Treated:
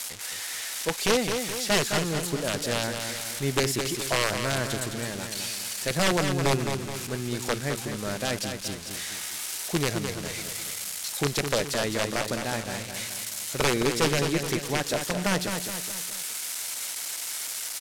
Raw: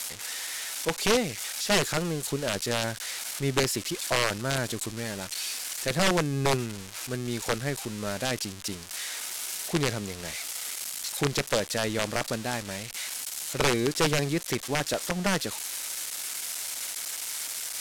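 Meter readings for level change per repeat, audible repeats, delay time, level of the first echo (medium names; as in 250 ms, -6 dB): -6.5 dB, 4, 212 ms, -6.5 dB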